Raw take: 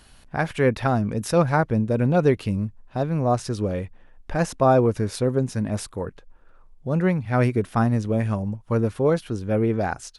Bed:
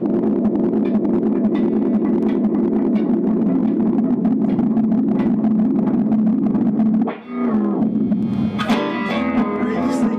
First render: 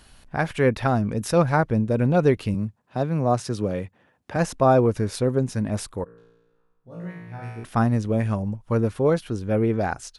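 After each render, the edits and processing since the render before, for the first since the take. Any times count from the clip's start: 2.54–4.36 s: high-pass 97 Hz 24 dB/octave; 6.04–7.64 s: feedback comb 58 Hz, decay 1.2 s, mix 100%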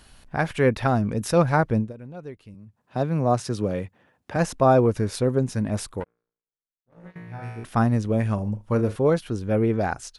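1.77–2.82 s: dip -19.5 dB, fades 0.16 s; 6.00–7.16 s: power-law waveshaper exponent 2; 8.34–8.96 s: flutter echo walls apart 6.6 m, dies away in 0.2 s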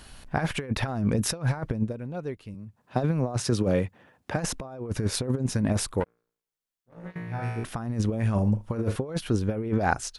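compressor with a negative ratio -25 dBFS, ratio -0.5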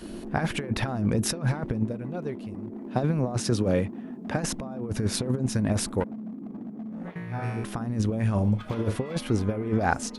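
add bed -21 dB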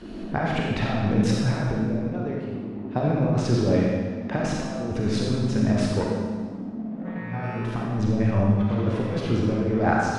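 distance through air 120 m; algorithmic reverb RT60 1.5 s, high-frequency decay 0.95×, pre-delay 5 ms, DRR -3 dB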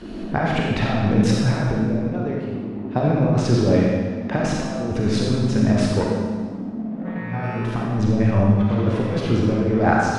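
trim +4 dB

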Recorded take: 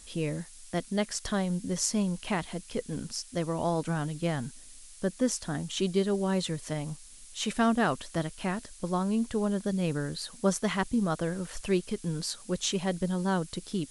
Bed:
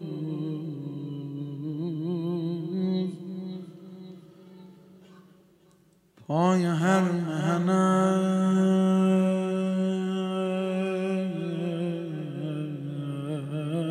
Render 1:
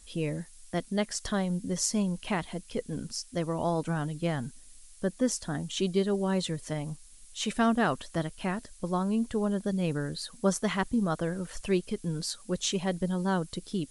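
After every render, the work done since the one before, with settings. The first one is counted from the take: noise reduction 6 dB, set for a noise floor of -50 dBFS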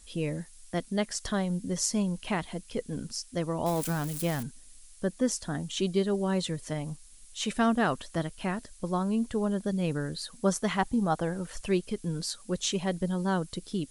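3.66–4.43 s: zero-crossing glitches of -27 dBFS; 10.78–11.43 s: peaking EQ 810 Hz +9.5 dB 0.31 oct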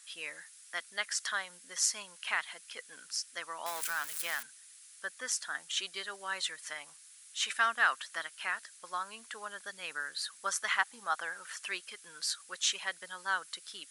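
resonant high-pass 1.5 kHz, resonance Q 2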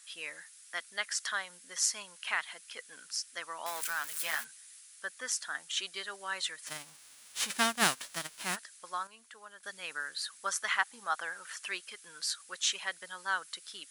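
4.15–4.81 s: doubling 13 ms -3 dB; 6.66–8.55 s: formants flattened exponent 0.3; 9.07–9.63 s: gain -8.5 dB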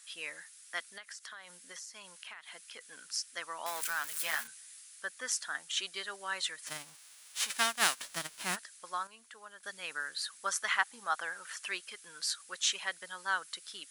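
0.96–2.81 s: compression 12:1, threshold -43 dBFS; 4.42–5.02 s: doubling 30 ms -5 dB; 6.95–7.99 s: high-pass 770 Hz 6 dB/octave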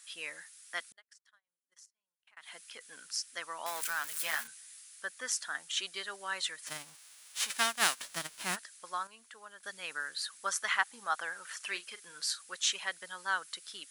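0.92–2.37 s: gate -45 dBFS, range -44 dB; 11.56–12.41 s: doubling 40 ms -13 dB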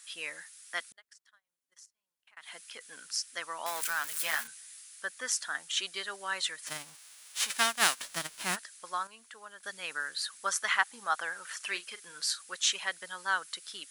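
trim +2.5 dB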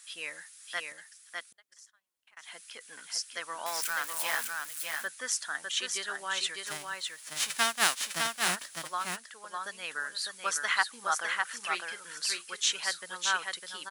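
delay 604 ms -4 dB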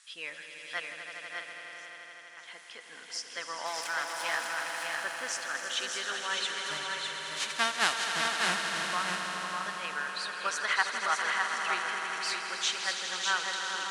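distance through air 71 m; echo with a slow build-up 81 ms, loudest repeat 5, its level -10 dB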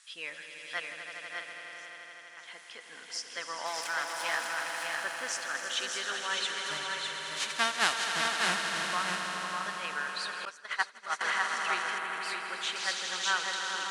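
10.45–11.21 s: expander -23 dBFS; 11.98–12.76 s: peaking EQ 5.8 kHz -11 dB 0.93 oct

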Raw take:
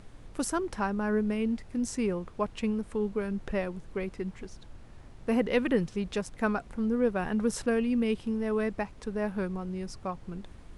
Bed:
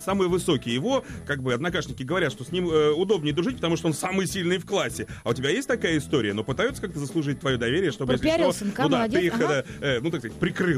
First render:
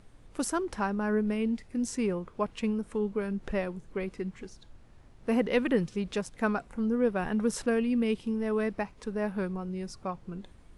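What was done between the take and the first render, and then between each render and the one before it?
noise print and reduce 6 dB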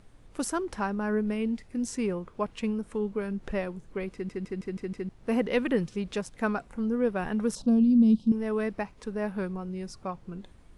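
4.13 s: stutter in place 0.16 s, 6 plays; 7.55–8.32 s: FFT filter 140 Hz 0 dB, 220 Hz +11 dB, 370 Hz -11 dB, 620 Hz -3 dB, 1.1 kHz -9 dB, 1.9 kHz -29 dB, 3.9 kHz 0 dB, 5.6 kHz -4 dB, 12 kHz -15 dB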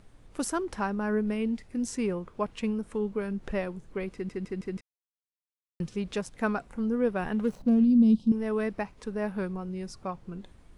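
4.81–5.80 s: mute; 7.34–7.85 s: median filter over 25 samples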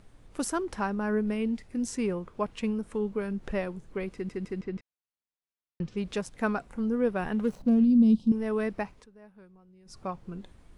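4.61–5.97 s: distance through air 130 m; 8.95–9.97 s: dip -21.5 dB, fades 0.12 s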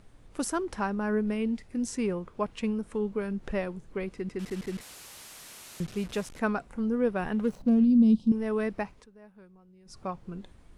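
4.39–6.39 s: one-bit delta coder 64 kbps, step -40 dBFS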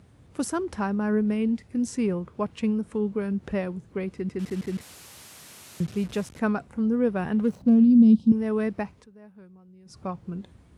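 high-pass 71 Hz 24 dB/octave; bass shelf 230 Hz +9.5 dB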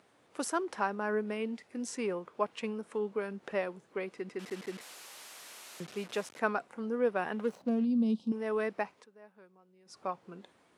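high-pass 490 Hz 12 dB/octave; treble shelf 5.5 kHz -5 dB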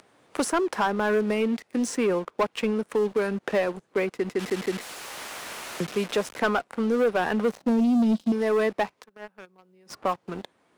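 waveshaping leveller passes 3; three bands compressed up and down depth 40%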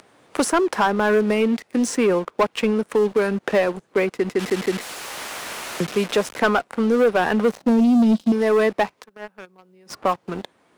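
trim +5.5 dB

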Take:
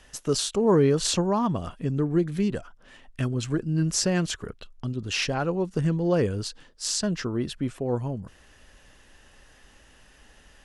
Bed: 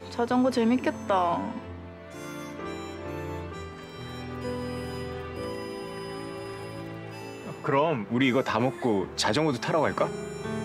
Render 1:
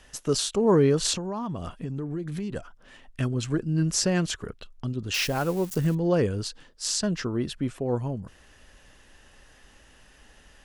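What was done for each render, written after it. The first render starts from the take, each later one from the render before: 1.13–2.56 s: compression, threshold -28 dBFS; 5.14–5.95 s: zero-crossing glitches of -29.5 dBFS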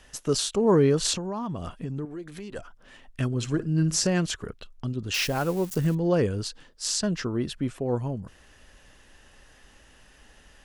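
2.05–2.58 s: peaking EQ 130 Hz -14.5 dB 1.6 oct; 3.31–4.07 s: flutter echo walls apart 9.8 m, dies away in 0.22 s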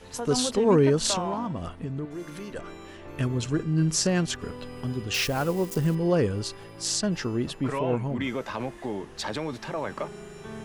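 add bed -7 dB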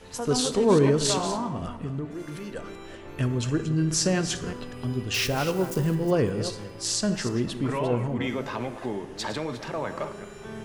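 chunks repeated in reverse 197 ms, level -11 dB; plate-style reverb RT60 1.2 s, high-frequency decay 0.6×, DRR 10.5 dB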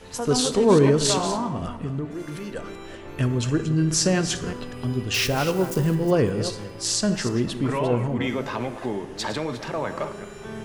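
trim +3 dB

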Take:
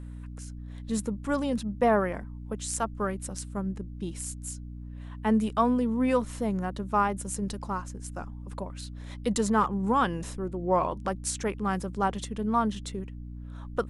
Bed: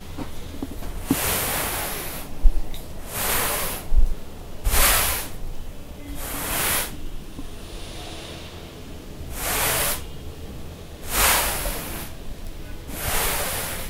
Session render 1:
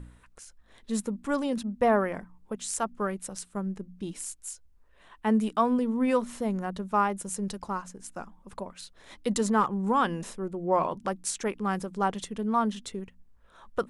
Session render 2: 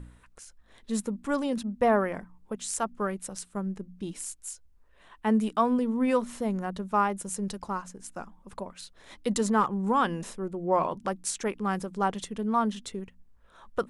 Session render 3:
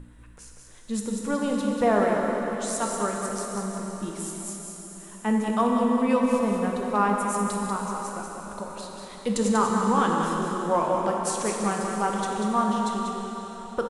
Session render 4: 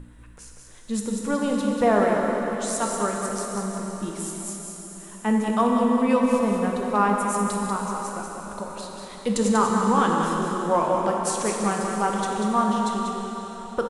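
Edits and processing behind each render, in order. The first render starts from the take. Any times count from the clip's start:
de-hum 60 Hz, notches 5
no audible change
on a send: delay 191 ms -6 dB; on the sum: plate-style reverb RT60 4.4 s, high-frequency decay 0.95×, DRR 0 dB
trim +2 dB

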